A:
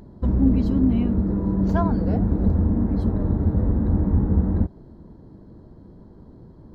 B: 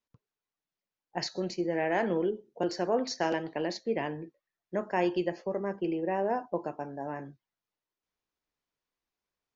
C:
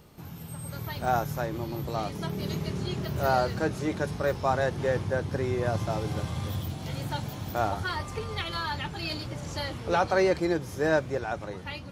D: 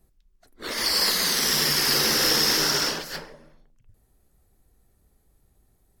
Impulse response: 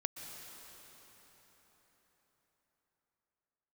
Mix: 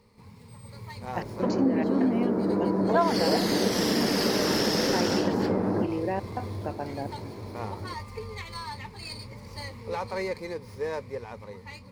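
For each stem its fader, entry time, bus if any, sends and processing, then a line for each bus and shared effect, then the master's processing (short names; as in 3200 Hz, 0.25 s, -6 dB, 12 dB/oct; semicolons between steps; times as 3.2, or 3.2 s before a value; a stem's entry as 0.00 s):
0.0 dB, 1.20 s, no send, HPF 170 Hz 24 dB/oct; band shelf 890 Hz +11.5 dB 3 oct
+3.0 dB, 0.00 s, no send, step gate "x..x..xxxx" 172 bpm -60 dB
-8.0 dB, 0.00 s, no send, ripple EQ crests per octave 0.91, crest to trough 14 dB; running maximum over 3 samples
-1.5 dB, 2.30 s, no send, high shelf 8300 Hz -11 dB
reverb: off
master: compressor 2:1, threshold -25 dBFS, peak gain reduction 9 dB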